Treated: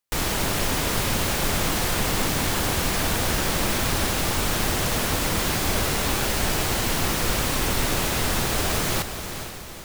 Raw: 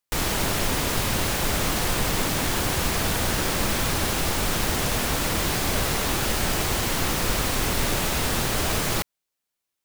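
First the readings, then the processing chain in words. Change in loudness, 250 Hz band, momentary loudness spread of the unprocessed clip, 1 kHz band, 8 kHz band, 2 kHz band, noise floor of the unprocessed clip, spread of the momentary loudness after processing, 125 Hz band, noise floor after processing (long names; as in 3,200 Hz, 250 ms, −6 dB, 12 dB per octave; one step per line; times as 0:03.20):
+0.5 dB, +0.5 dB, 0 LU, +0.5 dB, +0.5 dB, +0.5 dB, −83 dBFS, 1 LU, +0.5 dB, −35 dBFS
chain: feedback delay with all-pass diffusion 462 ms, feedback 49%, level −9 dB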